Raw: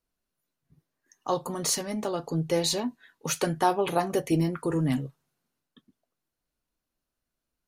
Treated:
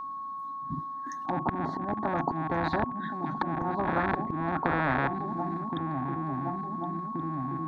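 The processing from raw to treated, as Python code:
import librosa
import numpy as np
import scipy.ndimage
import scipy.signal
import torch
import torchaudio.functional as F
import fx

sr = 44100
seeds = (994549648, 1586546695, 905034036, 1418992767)

p1 = fx.rattle_buzz(x, sr, strikes_db=-40.0, level_db=-14.0)
p2 = scipy.signal.sosfilt(scipy.signal.butter(2, 77.0, 'highpass', fs=sr, output='sos'), p1)
p3 = fx.notch(p2, sr, hz=3000.0, q=12.0)
p4 = fx.env_lowpass_down(p3, sr, base_hz=710.0, full_db=-24.0)
p5 = fx.curve_eq(p4, sr, hz=(130.0, 290.0, 480.0, 790.0, 1100.0, 1700.0, 2600.0, 3600.0, 6300.0, 12000.0), db=(0, 11, -24, 4, -8, -2, -25, -6, -19, -22))
p6 = fx.auto_swell(p5, sr, attack_ms=579.0)
p7 = p6 + 10.0 ** (-47.0 / 20.0) * np.sin(2.0 * np.pi * 1100.0 * np.arange(len(p6)) / sr)
p8 = p7 + fx.echo_swing(p7, sr, ms=1427, ratio=3, feedback_pct=47, wet_db=-19, dry=0)
y = fx.spectral_comp(p8, sr, ratio=10.0)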